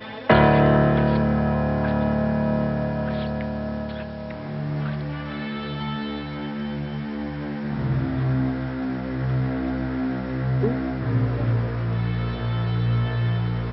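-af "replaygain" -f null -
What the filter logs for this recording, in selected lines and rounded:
track_gain = +5.6 dB
track_peak = 0.567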